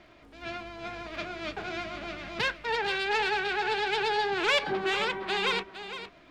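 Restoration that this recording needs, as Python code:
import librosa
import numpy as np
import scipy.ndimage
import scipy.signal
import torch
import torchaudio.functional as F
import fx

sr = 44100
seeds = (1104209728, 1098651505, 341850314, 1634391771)

y = fx.fix_declick_ar(x, sr, threshold=6.5)
y = fx.fix_echo_inverse(y, sr, delay_ms=461, level_db=-11.5)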